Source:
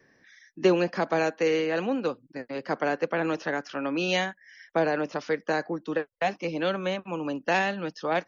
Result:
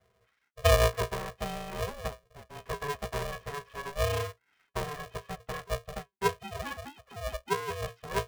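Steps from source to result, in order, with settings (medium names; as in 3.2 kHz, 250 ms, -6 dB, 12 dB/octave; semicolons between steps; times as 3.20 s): 6.38–7.70 s: formants replaced by sine waves; pitch-class resonator F, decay 0.14 s; polarity switched at an audio rate 290 Hz; trim +5.5 dB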